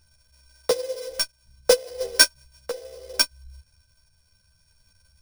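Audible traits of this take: a buzz of ramps at a fixed pitch in blocks of 8 samples; tremolo triangle 0.66 Hz, depth 40%; aliases and images of a low sample rate 15 kHz, jitter 0%; a shimmering, thickened sound

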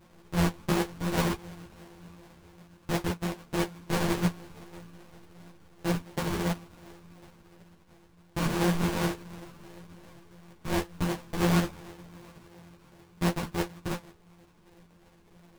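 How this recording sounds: a buzz of ramps at a fixed pitch in blocks of 256 samples; phasing stages 8, 2.8 Hz, lowest notch 530–2600 Hz; aliases and images of a low sample rate 1.3 kHz, jitter 20%; a shimmering, thickened sound

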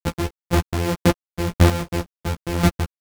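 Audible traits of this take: a buzz of ramps at a fixed pitch in blocks of 256 samples; chopped level 1.9 Hz, depth 65%, duty 20%; a quantiser's noise floor 8-bit, dither none; a shimmering, thickened sound

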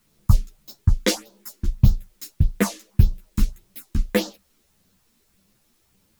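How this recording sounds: phasing stages 4, 1.7 Hz, lowest notch 110–2200 Hz; a quantiser's noise floor 12-bit, dither triangular; a shimmering, thickened sound

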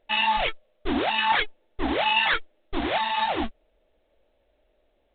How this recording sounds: a buzz of ramps at a fixed pitch in blocks of 8 samples; µ-law

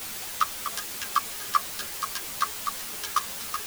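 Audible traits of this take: chopped level 1.4 Hz, depth 60%, duty 65%; a quantiser's noise floor 6-bit, dither triangular; a shimmering, thickened sound

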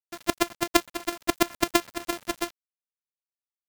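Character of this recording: a buzz of ramps at a fixed pitch in blocks of 128 samples; chopped level 8 Hz, depth 65%, duty 40%; a quantiser's noise floor 8-bit, dither none

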